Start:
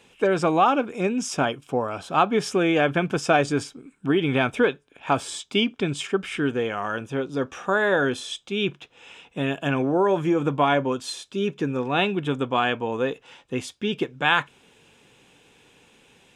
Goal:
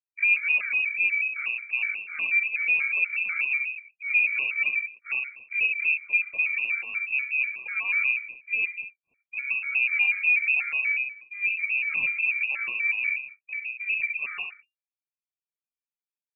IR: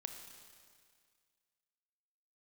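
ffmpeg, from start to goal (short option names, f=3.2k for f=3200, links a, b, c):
-filter_complex "[0:a]asplit=2[a][b];[b]adelay=67,lowpass=f=1.3k:p=1,volume=-6dB,asplit=2[c][d];[d]adelay=67,lowpass=f=1.3k:p=1,volume=0.47,asplit=2[e][f];[f]adelay=67,lowpass=f=1.3k:p=1,volume=0.47,asplit=2[g][h];[h]adelay=67,lowpass=f=1.3k:p=1,volume=0.47,asplit=2[i][j];[j]adelay=67,lowpass=f=1.3k:p=1,volume=0.47,asplit=2[k][l];[l]adelay=67,lowpass=f=1.3k:p=1,volume=0.47[m];[c][e][g][i][k][m]amix=inputs=6:normalize=0[n];[a][n]amix=inputs=2:normalize=0,asoftclip=type=tanh:threshold=-19.5dB,agate=range=-55dB:threshold=-42dB:ratio=16:detection=peak,equalizer=f=1.6k:w=0.52:g=-10.5,asplit=2[o][p];[p]aeval=exprs='0.106*sin(PI/2*1.41*val(0)/0.106)':c=same,volume=-10dB[q];[o][q]amix=inputs=2:normalize=0,asplit=2[r][s];[s]asetrate=88200,aresample=44100,atempo=0.5,volume=-6dB[t];[r][t]amix=inputs=2:normalize=0,lowshelf=f=600:t=q:w=3:g=7.5,lowpass=f=2.4k:t=q:w=0.5098,lowpass=f=2.4k:t=q:w=0.6013,lowpass=f=2.4k:t=q:w=0.9,lowpass=f=2.4k:t=q:w=2.563,afreqshift=-2800,afftfilt=real='re*gt(sin(2*PI*4.1*pts/sr)*(1-2*mod(floor(b*sr/1024/1200),2)),0)':imag='im*gt(sin(2*PI*4.1*pts/sr)*(1-2*mod(floor(b*sr/1024/1200),2)),0)':win_size=1024:overlap=0.75,volume=-8.5dB"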